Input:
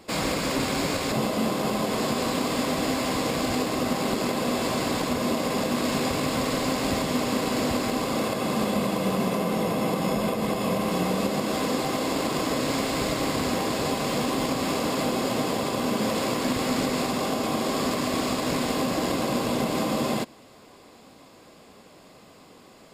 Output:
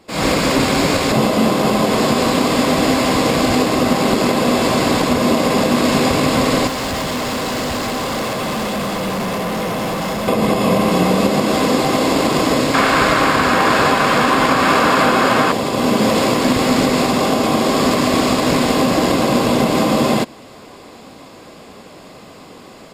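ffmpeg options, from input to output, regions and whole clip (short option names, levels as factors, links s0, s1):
-filter_complex "[0:a]asettb=1/sr,asplit=3[s0][s1][s2];[s0]atrim=end=6.674[s3];[s1]atrim=start=6.67:end=10.28,asetpts=PTS-STARTPTS,afade=t=in:d=0.004:c=qsin,afade=t=out:st=3.606:d=0.004:c=qsin,equalizer=f=280:t=o:w=1.9:g=-5.5,bandreject=f=2400:w=14,volume=33.5,asoftclip=hard,volume=0.0299[s4];[s2]atrim=start=10.276[s5];[s3][s4]acrossfade=d=0.004:c1=hsin:c2=qsin[s6];[s6][s5]acrossfade=d=0.004:c1=qsin:c2=hsin,asettb=1/sr,asplit=3[s7][s8][s9];[s7]atrim=end=12.744[s10];[s8]atrim=start=12.74:end=15.52,asetpts=PTS-STARTPTS,afade=t=in:d=0.004:c=qsin,afade=t=out:st=2.776:d=0.004:c=qsin,equalizer=f=1500:t=o:w=1.4:g=14,bandreject=f=2000:w=15[s11];[s9]atrim=start=15.516[s12];[s10][s11]acrossfade=d=0.004:c1=hsin:c2=qsin[s13];[s13][s12]acrossfade=d=0.004:c1=qsin:c2=hsin,highshelf=f=6900:g=-4.5,dynaudnorm=f=120:g=3:m=3.98"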